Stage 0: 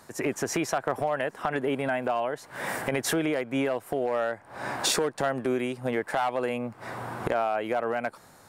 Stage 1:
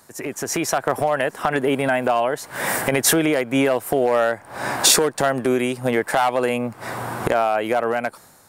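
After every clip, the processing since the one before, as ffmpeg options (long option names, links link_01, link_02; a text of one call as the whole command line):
ffmpeg -i in.wav -af "dynaudnorm=framelen=130:gausssize=9:maxgain=11dB,highshelf=frequency=6500:gain=10,volume=-1.5dB" out.wav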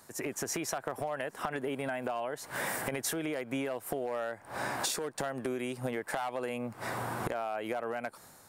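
ffmpeg -i in.wav -af "acompressor=threshold=-27dB:ratio=6,volume=-5dB" out.wav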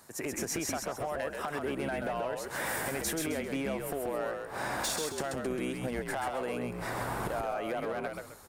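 ffmpeg -i in.wav -filter_complex "[0:a]volume=27.5dB,asoftclip=hard,volume=-27.5dB,asplit=2[link_01][link_02];[link_02]asplit=4[link_03][link_04][link_05][link_06];[link_03]adelay=132,afreqshift=-66,volume=-4dB[link_07];[link_04]adelay=264,afreqshift=-132,volume=-13.9dB[link_08];[link_05]adelay=396,afreqshift=-198,volume=-23.8dB[link_09];[link_06]adelay=528,afreqshift=-264,volume=-33.7dB[link_10];[link_07][link_08][link_09][link_10]amix=inputs=4:normalize=0[link_11];[link_01][link_11]amix=inputs=2:normalize=0" out.wav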